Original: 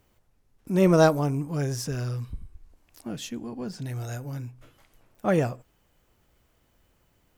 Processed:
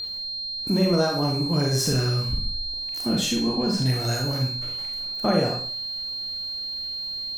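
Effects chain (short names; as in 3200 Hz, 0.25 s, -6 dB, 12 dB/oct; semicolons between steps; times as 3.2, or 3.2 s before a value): compressor 10:1, threshold -30 dBFS, peak gain reduction 17 dB; whine 4200 Hz -38 dBFS; Schroeder reverb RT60 0.44 s, combs from 31 ms, DRR 0.5 dB; gain +9 dB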